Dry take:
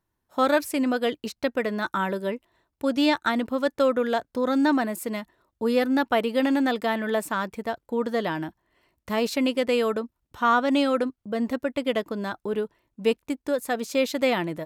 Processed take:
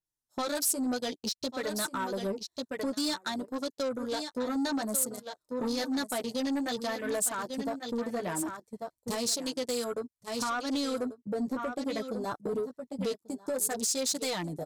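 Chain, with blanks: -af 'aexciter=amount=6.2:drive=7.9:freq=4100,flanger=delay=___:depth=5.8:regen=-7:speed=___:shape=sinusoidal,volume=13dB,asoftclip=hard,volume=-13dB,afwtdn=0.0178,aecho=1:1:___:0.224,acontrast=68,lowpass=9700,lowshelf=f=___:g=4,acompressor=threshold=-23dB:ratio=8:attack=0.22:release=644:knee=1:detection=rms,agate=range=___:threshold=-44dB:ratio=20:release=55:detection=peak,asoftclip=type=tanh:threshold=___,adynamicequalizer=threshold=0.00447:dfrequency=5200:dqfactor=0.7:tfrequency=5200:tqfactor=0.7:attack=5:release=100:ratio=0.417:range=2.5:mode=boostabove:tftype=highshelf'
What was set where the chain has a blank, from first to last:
6.4, 0.56, 1141, 120, -9dB, -25.5dB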